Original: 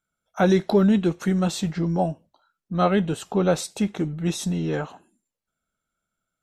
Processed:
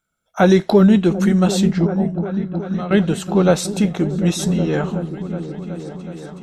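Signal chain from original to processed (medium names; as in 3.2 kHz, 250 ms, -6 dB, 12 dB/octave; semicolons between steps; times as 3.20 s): 1.86–2.91 s: compression 6:1, threshold -33 dBFS, peak gain reduction 17 dB; delay with an opening low-pass 371 ms, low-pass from 200 Hz, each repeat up 1 oct, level -6 dB; trim +6 dB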